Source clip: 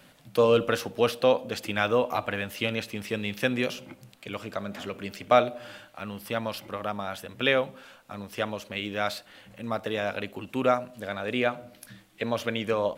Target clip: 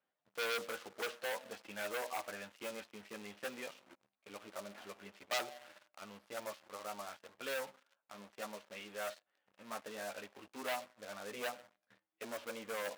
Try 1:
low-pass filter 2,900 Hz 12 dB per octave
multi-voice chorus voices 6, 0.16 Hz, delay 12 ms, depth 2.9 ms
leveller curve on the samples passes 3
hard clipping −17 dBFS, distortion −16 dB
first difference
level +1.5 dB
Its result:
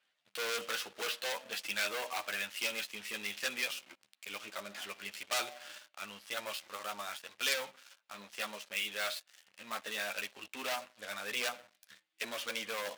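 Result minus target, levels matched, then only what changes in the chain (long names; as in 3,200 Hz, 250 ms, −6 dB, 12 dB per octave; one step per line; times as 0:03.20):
4,000 Hz band +4.0 dB
change: low-pass filter 910 Hz 12 dB per octave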